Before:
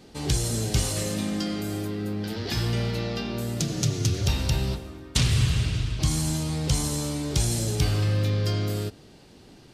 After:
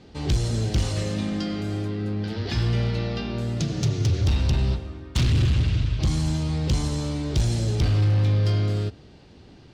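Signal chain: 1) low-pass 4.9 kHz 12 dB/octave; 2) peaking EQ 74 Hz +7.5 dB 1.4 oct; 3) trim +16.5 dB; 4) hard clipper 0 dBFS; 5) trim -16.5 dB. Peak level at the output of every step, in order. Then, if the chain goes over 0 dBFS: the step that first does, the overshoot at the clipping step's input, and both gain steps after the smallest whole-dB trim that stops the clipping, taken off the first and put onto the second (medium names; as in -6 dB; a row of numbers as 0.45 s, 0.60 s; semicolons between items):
-10.0 dBFS, -7.5 dBFS, +9.0 dBFS, 0.0 dBFS, -16.5 dBFS; step 3, 9.0 dB; step 3 +7.5 dB, step 5 -7.5 dB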